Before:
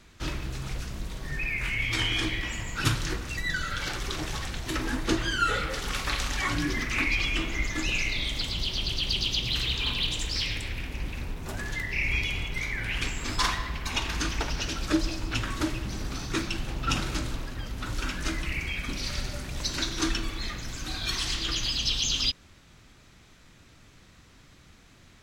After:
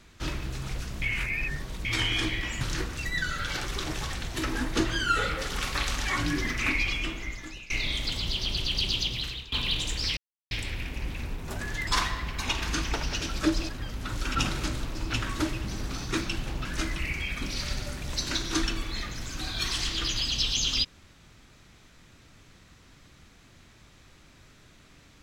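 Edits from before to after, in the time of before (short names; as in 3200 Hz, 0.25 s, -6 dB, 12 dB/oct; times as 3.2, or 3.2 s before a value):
1.02–1.85 reverse
2.61–2.93 cut
7.03–8.02 fade out, to -23 dB
9.3–9.84 fade out, to -20 dB
10.49 insert silence 0.34 s
11.85–13.34 cut
15.16–16.86 swap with 17.46–18.12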